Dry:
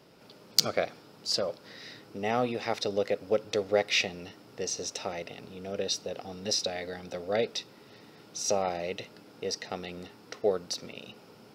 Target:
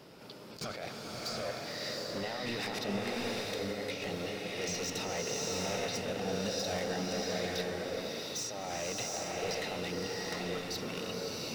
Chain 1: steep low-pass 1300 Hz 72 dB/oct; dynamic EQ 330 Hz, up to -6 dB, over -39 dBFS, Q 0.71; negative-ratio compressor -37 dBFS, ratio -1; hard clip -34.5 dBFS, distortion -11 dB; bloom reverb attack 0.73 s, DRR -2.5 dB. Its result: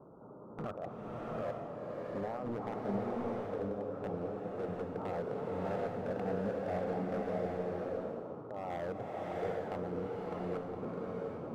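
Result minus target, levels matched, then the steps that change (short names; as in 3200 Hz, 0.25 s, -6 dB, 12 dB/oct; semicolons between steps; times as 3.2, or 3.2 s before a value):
1000 Hz band +2.5 dB
remove: steep low-pass 1300 Hz 72 dB/oct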